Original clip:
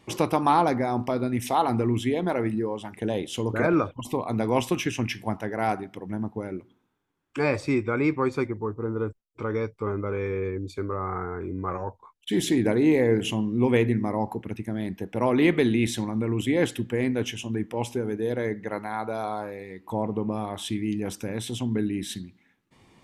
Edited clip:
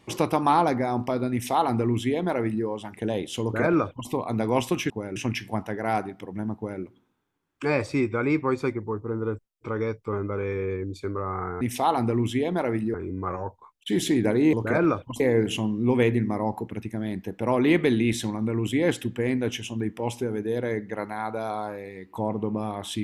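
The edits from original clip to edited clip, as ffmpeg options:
-filter_complex "[0:a]asplit=7[a][b][c][d][e][f][g];[a]atrim=end=4.902[h];[b]atrim=start=6.298:end=6.562[i];[c]atrim=start=4.898:end=11.352[j];[d]atrim=start=1.318:end=2.652[k];[e]atrim=start=11.348:end=12.942[l];[f]atrim=start=3.418:end=4.092[m];[g]atrim=start=12.938[n];[h][i]acrossfade=d=0.004:c1=hsin:c2=hsin[o];[o][j]acrossfade=d=0.004:c1=hsin:c2=hsin[p];[p][k]acrossfade=d=0.004:c1=hsin:c2=hsin[q];[q][l]acrossfade=d=0.004:c1=hsin:c2=hsin[r];[r][m]acrossfade=d=0.004:c1=hsin:c2=hsin[s];[s][n]acrossfade=d=0.004:c1=hsin:c2=hsin"

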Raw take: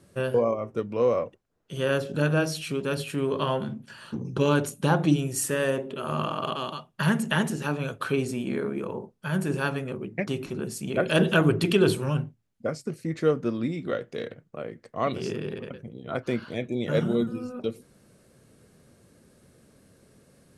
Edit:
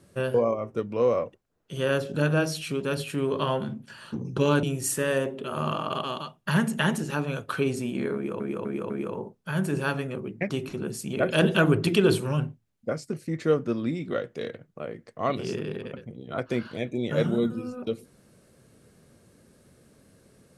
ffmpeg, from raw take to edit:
-filter_complex "[0:a]asplit=5[a][b][c][d][e];[a]atrim=end=4.632[f];[b]atrim=start=5.148:end=8.922[g];[c]atrim=start=8.668:end=8.922[h];[d]atrim=start=8.668:end=8.922[i];[e]atrim=start=8.668[j];[f][g]acrossfade=d=0.004:c1=hsin:c2=hsin[k];[k][h]acrossfade=d=0.004:c1=hsin:c2=hsin[l];[l][i]acrossfade=d=0.004:c1=hsin:c2=hsin[m];[m][j]acrossfade=d=0.004:c1=hsin:c2=hsin"

